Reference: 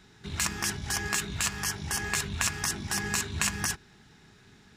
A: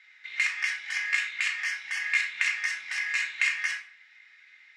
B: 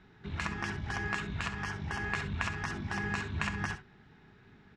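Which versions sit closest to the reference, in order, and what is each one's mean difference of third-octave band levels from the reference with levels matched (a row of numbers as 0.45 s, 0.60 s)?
B, A; 6.5 dB, 18.0 dB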